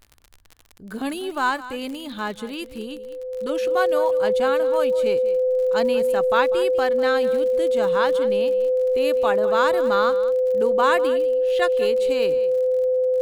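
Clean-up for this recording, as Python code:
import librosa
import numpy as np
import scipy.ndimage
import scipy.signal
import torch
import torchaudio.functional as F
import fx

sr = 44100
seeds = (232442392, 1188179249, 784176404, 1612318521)

y = fx.fix_declick_ar(x, sr, threshold=6.5)
y = fx.notch(y, sr, hz=510.0, q=30.0)
y = fx.fix_echo_inverse(y, sr, delay_ms=197, level_db=-15.5)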